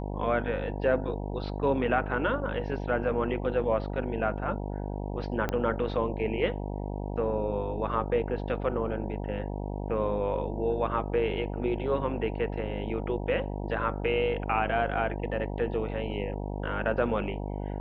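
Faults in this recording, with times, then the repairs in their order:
buzz 50 Hz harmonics 19 -34 dBFS
5.49 pop -15 dBFS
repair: de-click; de-hum 50 Hz, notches 19

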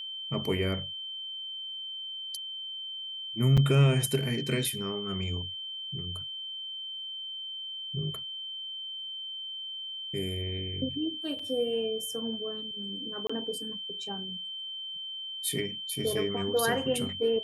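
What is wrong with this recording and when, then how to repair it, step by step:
tone 3100 Hz -36 dBFS
3.57–3.58 gap 5.7 ms
11.39 gap 4.3 ms
13.27–13.29 gap 25 ms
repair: notch 3100 Hz, Q 30; interpolate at 3.57, 5.7 ms; interpolate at 11.39, 4.3 ms; interpolate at 13.27, 25 ms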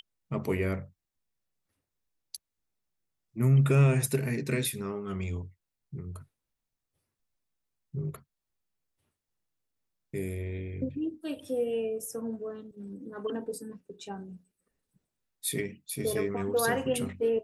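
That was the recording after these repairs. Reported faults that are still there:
none

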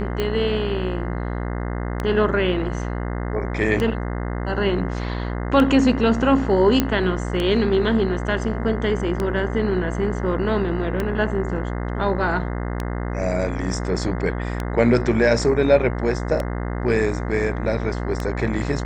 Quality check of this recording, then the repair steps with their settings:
buzz 60 Hz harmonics 35 -26 dBFS
tick 33 1/3 rpm -11 dBFS
6.8 pop -4 dBFS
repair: de-click; de-hum 60 Hz, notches 35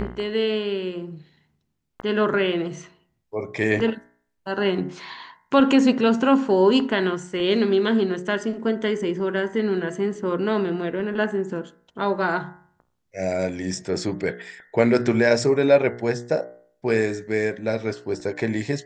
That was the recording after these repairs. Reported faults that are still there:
none

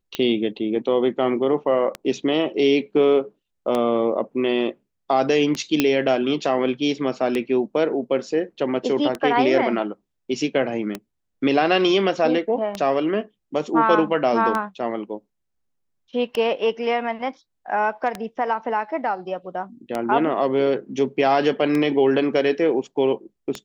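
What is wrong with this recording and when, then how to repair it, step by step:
tick 33 1/3 rpm -11 dBFS
5.8 pop -3 dBFS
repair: de-click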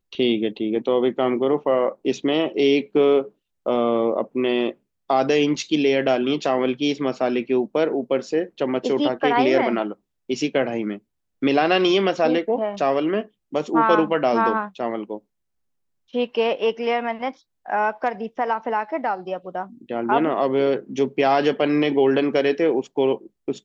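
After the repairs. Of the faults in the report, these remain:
5.8 pop

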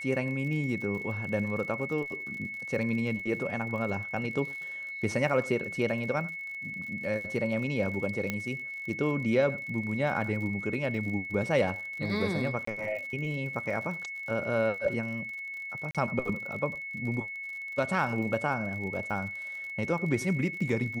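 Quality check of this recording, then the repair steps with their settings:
crackle 55/s -39 dBFS
tone 2200 Hz -36 dBFS
8.3 pop -16 dBFS
12.65–12.67 gap 24 ms
15.91–15.95 gap 37 ms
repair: de-click; notch 2200 Hz, Q 30; interpolate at 12.65, 24 ms; interpolate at 15.91, 37 ms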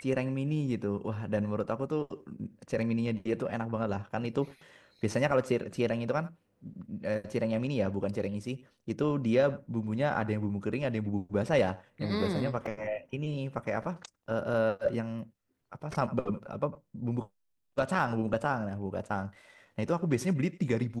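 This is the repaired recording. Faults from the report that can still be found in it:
none

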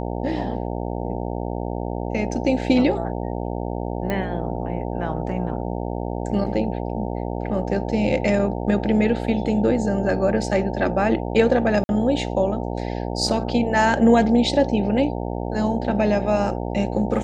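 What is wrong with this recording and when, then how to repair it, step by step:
buzz 60 Hz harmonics 15 -27 dBFS
4.1 pop -13 dBFS
11.84–11.89 gap 51 ms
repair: de-click; de-hum 60 Hz, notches 15; interpolate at 11.84, 51 ms

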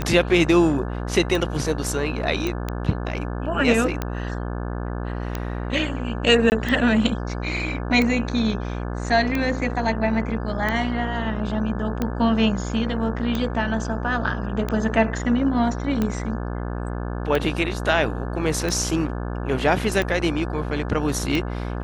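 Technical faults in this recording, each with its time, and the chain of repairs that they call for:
buzz 60 Hz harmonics 29 -28 dBFS
tick 45 rpm -11 dBFS
2.47 pop -12 dBFS
6.5–6.52 gap 19 ms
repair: de-click; de-hum 60 Hz, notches 29; interpolate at 6.5, 19 ms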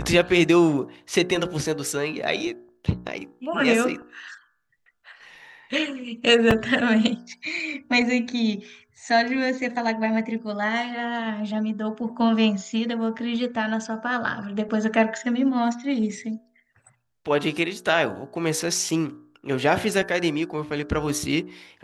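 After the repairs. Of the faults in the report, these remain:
none

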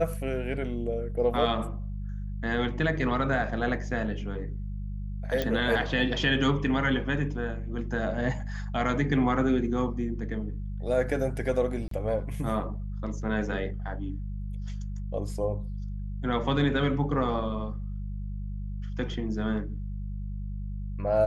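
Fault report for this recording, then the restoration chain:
hum 50 Hz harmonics 4 -34 dBFS
5.42 pop -15 dBFS
11.88–11.91 gap 33 ms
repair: de-click; de-hum 50 Hz, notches 4; interpolate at 11.88, 33 ms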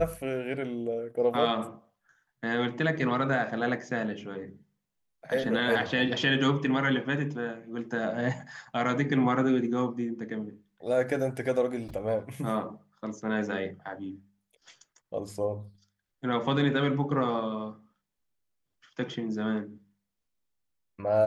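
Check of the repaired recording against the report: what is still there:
none

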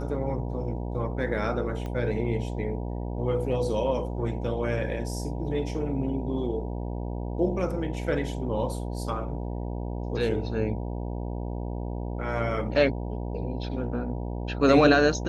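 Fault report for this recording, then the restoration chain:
buzz 60 Hz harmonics 16 -32 dBFS
1.86 pop -23 dBFS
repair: de-click; de-hum 60 Hz, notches 16

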